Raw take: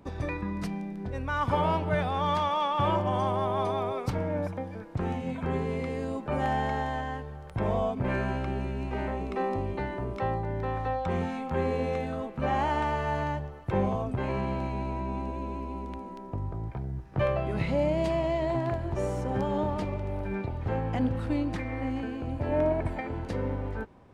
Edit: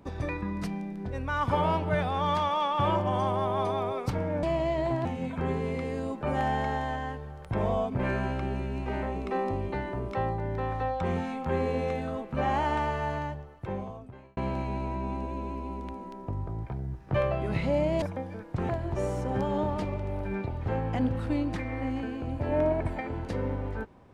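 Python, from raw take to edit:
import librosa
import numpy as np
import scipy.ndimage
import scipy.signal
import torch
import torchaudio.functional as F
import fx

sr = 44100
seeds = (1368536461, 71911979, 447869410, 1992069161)

y = fx.edit(x, sr, fx.swap(start_s=4.43, length_s=0.67, other_s=18.07, other_length_s=0.62),
    fx.fade_out_span(start_s=12.86, length_s=1.56), tone=tone)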